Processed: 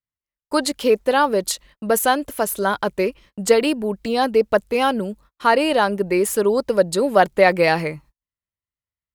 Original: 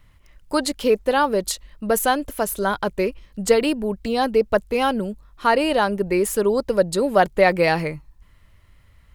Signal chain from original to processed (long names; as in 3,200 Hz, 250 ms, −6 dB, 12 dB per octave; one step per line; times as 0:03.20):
high-pass filter 150 Hz 6 dB per octave
noise gate −47 dBFS, range −39 dB
level +2 dB